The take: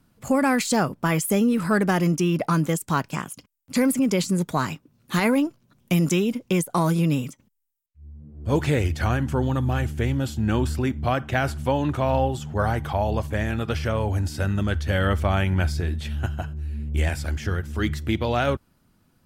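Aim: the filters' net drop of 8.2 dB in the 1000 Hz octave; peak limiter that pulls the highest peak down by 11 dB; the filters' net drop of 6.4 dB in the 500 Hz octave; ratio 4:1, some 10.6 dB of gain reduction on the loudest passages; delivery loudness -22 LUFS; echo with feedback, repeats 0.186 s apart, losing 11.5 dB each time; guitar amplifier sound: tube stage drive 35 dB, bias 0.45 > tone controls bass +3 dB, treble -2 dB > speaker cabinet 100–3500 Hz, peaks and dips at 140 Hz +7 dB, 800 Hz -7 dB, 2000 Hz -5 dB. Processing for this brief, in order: bell 500 Hz -6.5 dB; bell 1000 Hz -5 dB; compressor 4:1, threshold -32 dBFS; limiter -28.5 dBFS; feedback echo 0.186 s, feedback 27%, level -11.5 dB; tube stage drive 35 dB, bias 0.45; tone controls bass +3 dB, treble -2 dB; speaker cabinet 100–3500 Hz, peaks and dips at 140 Hz +7 dB, 800 Hz -7 dB, 2000 Hz -5 dB; gain +16.5 dB

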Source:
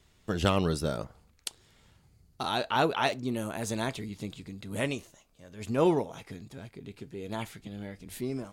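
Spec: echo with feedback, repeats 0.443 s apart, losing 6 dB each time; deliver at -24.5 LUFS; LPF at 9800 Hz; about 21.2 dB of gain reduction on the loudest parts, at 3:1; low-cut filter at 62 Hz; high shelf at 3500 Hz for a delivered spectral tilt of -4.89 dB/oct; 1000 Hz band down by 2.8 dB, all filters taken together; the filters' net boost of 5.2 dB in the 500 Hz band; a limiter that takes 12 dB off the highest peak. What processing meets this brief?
HPF 62 Hz; LPF 9800 Hz; bell 500 Hz +8.5 dB; bell 1000 Hz -8 dB; high shelf 3500 Hz +5 dB; compressor 3:1, threshold -46 dBFS; limiter -35 dBFS; feedback echo 0.443 s, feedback 50%, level -6 dB; gain +22 dB

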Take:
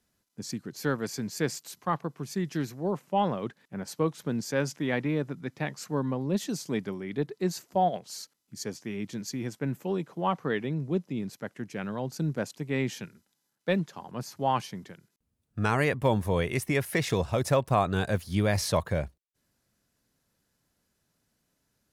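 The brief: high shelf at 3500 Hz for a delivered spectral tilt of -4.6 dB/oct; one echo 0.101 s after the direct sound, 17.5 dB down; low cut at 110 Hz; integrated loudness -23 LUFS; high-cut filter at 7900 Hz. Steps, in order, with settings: HPF 110 Hz; LPF 7900 Hz; high shelf 3500 Hz +8 dB; echo 0.101 s -17.5 dB; gain +7 dB

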